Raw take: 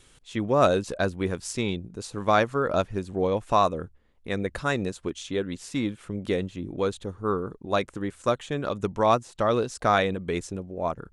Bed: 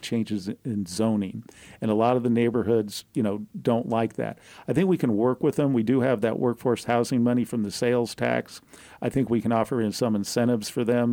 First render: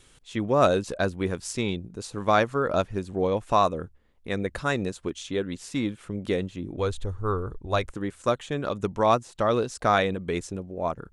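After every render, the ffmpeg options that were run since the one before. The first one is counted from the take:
-filter_complex "[0:a]asplit=3[a][b][c];[a]afade=t=out:st=6.77:d=0.02[d];[b]asubboost=boost=11:cutoff=61,afade=t=in:st=6.77:d=0.02,afade=t=out:st=7.9:d=0.02[e];[c]afade=t=in:st=7.9:d=0.02[f];[d][e][f]amix=inputs=3:normalize=0"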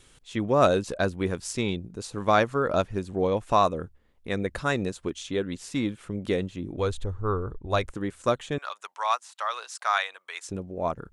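-filter_complex "[0:a]asettb=1/sr,asplit=3[a][b][c];[a]atrim=end=7.044[d];[b]atrim=start=7.04:end=7.7,asetpts=PTS-STARTPTS,afade=t=in:d=0.004:c=qsin,afade=t=out:st=0.656:d=0.004:c=qsin,lowpass=f=3.1k:p=1[e];[c]atrim=start=7.696[f];[d][e]acrossfade=d=0.004:c1=hsin:c2=qsin[g];[g][f]acrossfade=d=0.004:c1=qsin:c2=hsin,asettb=1/sr,asplit=3[h][i][j];[h]atrim=end=8.584[k];[i]atrim=start=8.58:end=10.49,asetpts=PTS-STARTPTS,afade=t=in:d=0.004:c=qsin,afade=t=out:st=1.906:d=0.004:c=qsin,highpass=f=900:w=0.5412,highpass=f=900:w=1.3066[l];[j]atrim=start=10.486[m];[k][l]acrossfade=d=0.004:c1=hsin:c2=qsin[n];[n][m]acrossfade=d=0.004:c1=qsin:c2=hsin"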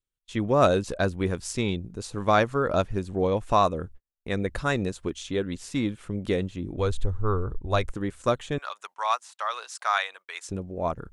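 -af "agate=range=-38dB:threshold=-47dB:ratio=16:detection=peak,lowshelf=f=66:g=10"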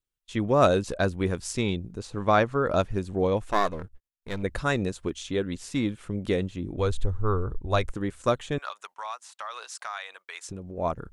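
-filter_complex "[0:a]asettb=1/sr,asplit=3[a][b][c];[a]atrim=end=1.994[d];[b]atrim=start=1.99:end=2.66,asetpts=PTS-STARTPTS,afade=t=in:d=0.004:c=qsin,afade=t=out:st=0.666:d=0.004:c=qsin,lowpass=f=3.7k:p=1[e];[c]atrim=start=2.656[f];[d][e]acrossfade=d=0.004:c1=hsin:c2=qsin[g];[g][f]acrossfade=d=0.004:c1=qsin:c2=hsin,asettb=1/sr,asplit=3[h][i][j];[h]atrim=end=3.444[k];[i]atrim=start=3.44:end=4.43,asetpts=PTS-STARTPTS,afade=t=in:d=0.004:c=qsin,afade=t=out:st=0.986:d=0.004:c=qsin,aeval=exprs='if(lt(val(0),0),0.251*val(0),val(0))':c=same[l];[j]atrim=start=4.426[m];[k][l]acrossfade=d=0.004:c1=hsin:c2=qsin[n];[n][m]acrossfade=d=0.004:c1=qsin:c2=hsin,asettb=1/sr,asplit=3[o][p][q];[o]atrim=end=8.704[r];[p]atrim=start=8.7:end=10.78,asetpts=PTS-STARTPTS,afade=t=in:d=0.004:c=qsin,afade=t=out:st=2.076:d=0.004:c=qsin,acompressor=threshold=-34dB:ratio=3:attack=3.2:release=140:knee=1:detection=peak[s];[q]atrim=start=10.776[t];[r][s]acrossfade=d=0.004:c1=hsin:c2=qsin[u];[u][t]acrossfade=d=0.004:c1=qsin:c2=hsin"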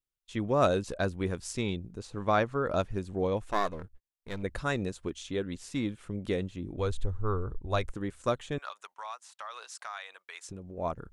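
-af "volume=-5dB"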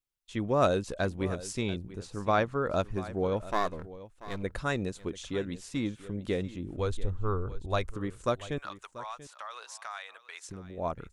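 -af "aecho=1:1:687:0.15"

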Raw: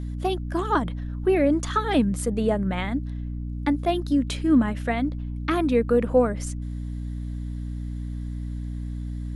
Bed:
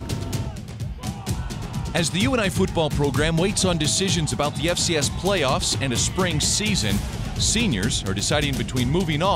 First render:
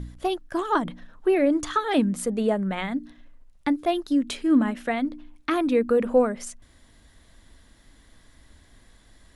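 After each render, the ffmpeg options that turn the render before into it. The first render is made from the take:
-af "bandreject=f=60:t=h:w=4,bandreject=f=120:t=h:w=4,bandreject=f=180:t=h:w=4,bandreject=f=240:t=h:w=4,bandreject=f=300:t=h:w=4"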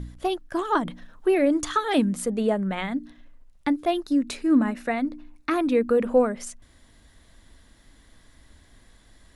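-filter_complex "[0:a]asettb=1/sr,asplit=3[a][b][c];[a]atrim=end=0.844[d];[b]atrim=start=0.84:end=2.15,asetpts=PTS-STARTPTS,afade=t=in:d=0.004:c=qsin,afade=t=out:st=1.306:d=0.004:c=qsin,highshelf=f=5k:g=5.5[e];[c]atrim=start=2.146[f];[d][e]acrossfade=d=0.004:c1=hsin:c2=qsin[g];[g][f]acrossfade=d=0.004:c1=qsin:c2=hsin,asettb=1/sr,asplit=3[h][i][j];[h]atrim=end=4.034[k];[i]atrim=start=4.03:end=5.59,asetpts=PTS-STARTPTS,afade=t=in:d=0.004:c=qsin,afade=t=out:st=1.556:d=0.004:c=qsin,bandreject=f=3.2k:w=5.5[l];[j]atrim=start=5.586[m];[k][l]acrossfade=d=0.004:c1=hsin:c2=qsin[n];[n][m]acrossfade=d=0.004:c1=qsin:c2=hsin"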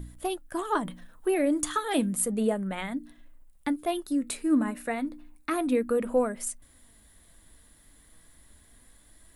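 -af "flanger=delay=3:depth=3.7:regen=79:speed=0.32:shape=sinusoidal,aexciter=amount=5.5:drive=3.4:freq=7.9k"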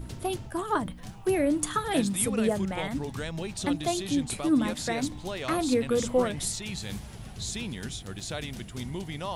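-filter_complex "[1:a]volume=-14dB[a];[0:a][a]amix=inputs=2:normalize=0"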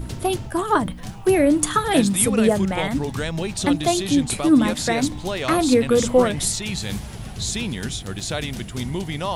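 -af "volume=8.5dB"

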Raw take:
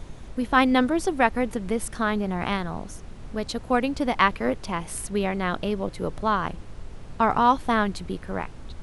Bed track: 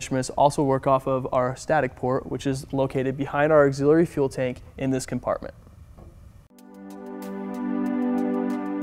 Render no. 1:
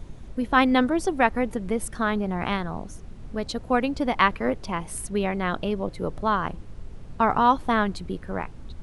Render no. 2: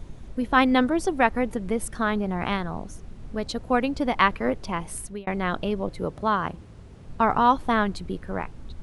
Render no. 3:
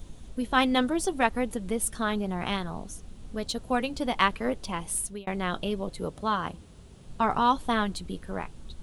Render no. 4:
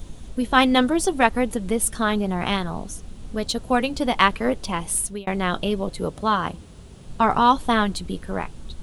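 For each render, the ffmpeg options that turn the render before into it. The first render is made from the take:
-af "afftdn=nr=6:nf=-42"
-filter_complex "[0:a]asettb=1/sr,asplit=3[a][b][c];[a]atrim=end=6.054[d];[b]atrim=start=6.05:end=7.06,asetpts=PTS-STARTPTS,afade=t=in:d=0.004:c=qsin,afade=t=out:st=1.006:d=0.004:c=qsin,highpass=60[e];[c]atrim=start=7.056[f];[d][e]acrossfade=d=0.004:c1=hsin:c2=qsin[g];[g][f]acrossfade=d=0.004:c1=qsin:c2=hsin,asplit=2[h][i];[h]atrim=end=5.27,asetpts=PTS-STARTPTS,afade=t=out:st=4.82:d=0.45:c=qsin[j];[i]atrim=start=5.27,asetpts=PTS-STARTPTS,afade=t=in:d=0.004:c=hsin[k];[j][k]concat=n=2:v=0:a=1"
-af "aexciter=amount=1.2:drive=9.3:freq=2.9k,flanger=delay=3.8:depth=1.7:regen=-66:speed=0.63:shape=sinusoidal"
-af "volume=6.5dB,alimiter=limit=-2dB:level=0:latency=1"

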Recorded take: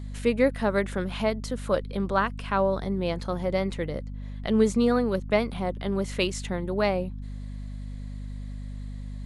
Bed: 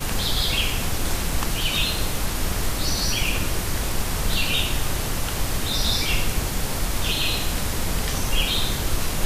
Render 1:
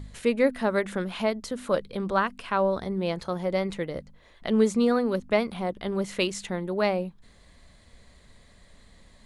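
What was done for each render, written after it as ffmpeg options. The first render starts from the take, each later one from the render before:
-af "bandreject=f=50:t=h:w=4,bandreject=f=100:t=h:w=4,bandreject=f=150:t=h:w=4,bandreject=f=200:t=h:w=4,bandreject=f=250:t=h:w=4"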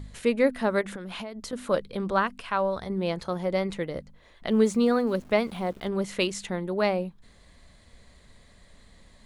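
-filter_complex "[0:a]asettb=1/sr,asplit=3[a][b][c];[a]atrim=end=0.814[d];[b]atrim=start=0.81:end=1.53,asetpts=PTS-STARTPTS,afade=t=in:d=0.004:c=qsin,afade=t=out:st=0.716:d=0.004:c=qsin,acompressor=threshold=-32dB:ratio=16:attack=3.2:release=140:knee=1:detection=peak[e];[c]atrim=start=1.526[f];[d][e]acrossfade=d=0.004:c1=hsin:c2=qsin[g];[g][f]acrossfade=d=0.004:c1=qsin:c2=hsin,asettb=1/sr,asplit=3[h][i][j];[h]atrim=end=2.414[k];[i]atrim=start=2.41:end=2.9,asetpts=PTS-STARTPTS,afade=t=in:d=0.004:c=qsin,afade=t=out:st=0.486:d=0.004:c=qsin,equalizer=f=290:t=o:w=1.3:g=-7.5[l];[j]atrim=start=2.896[m];[k][l]acrossfade=d=0.004:c1=hsin:c2=qsin[n];[n][m]acrossfade=d=0.004:c1=qsin:c2=hsin,asettb=1/sr,asplit=3[o][p][q];[o]atrim=end=4.514[r];[p]atrim=start=4.51:end=5.88,asetpts=PTS-STARTPTS,afade=t=in:d=0.004:c=qsin,afade=t=out:st=1.366:d=0.004:c=qsin,aeval=exprs='val(0)*gte(abs(val(0)),0.00398)':c=same[s];[q]atrim=start=5.876[t];[r][s]acrossfade=d=0.004:c1=hsin:c2=qsin[u];[u][t]acrossfade=d=0.004:c1=qsin:c2=hsin"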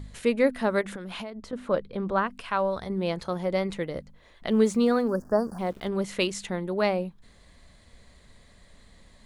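-filter_complex "[0:a]asettb=1/sr,asplit=3[a][b][c];[a]atrim=end=1.304[d];[b]atrim=start=1.3:end=2.31,asetpts=PTS-STARTPTS,afade=t=in:d=0.004:c=qsin,afade=t=out:st=1.006:d=0.004:c=qsin,lowpass=f=1.8k:p=1[e];[c]atrim=start=2.306[f];[d][e]acrossfade=d=0.004:c1=hsin:c2=qsin[g];[g][f]acrossfade=d=0.004:c1=qsin:c2=hsin,asplit=3[h][i][j];[h]afade=t=out:st=5.07:d=0.02[k];[i]asuperstop=centerf=2900:order=20:qfactor=1,afade=t=in:st=5.07:d=0.02,afade=t=out:st=5.58:d=0.02[l];[j]afade=t=in:st=5.58:d=0.02[m];[k][l][m]amix=inputs=3:normalize=0"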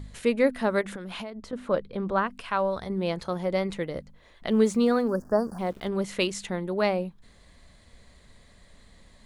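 -af anull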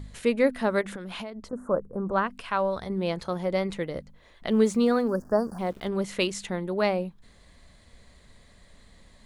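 -filter_complex "[0:a]asplit=3[a][b][c];[a]afade=t=out:st=1.47:d=0.02[d];[b]asuperstop=centerf=3200:order=8:qfactor=0.59,afade=t=in:st=1.47:d=0.02,afade=t=out:st=2.12:d=0.02[e];[c]afade=t=in:st=2.12:d=0.02[f];[d][e][f]amix=inputs=3:normalize=0"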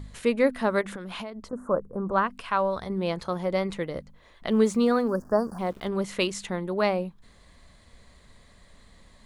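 -af "equalizer=f=1.1k:t=o:w=0.55:g=3.5"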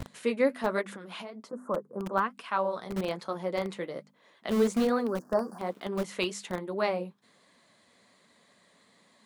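-filter_complex "[0:a]acrossover=split=160[a][b];[a]acrusher=bits=5:mix=0:aa=0.000001[c];[b]flanger=delay=2.8:depth=9.4:regen=-46:speed=1.2:shape=triangular[d];[c][d]amix=inputs=2:normalize=0"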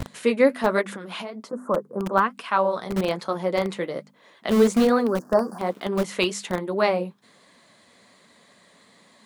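-af "volume=7.5dB"

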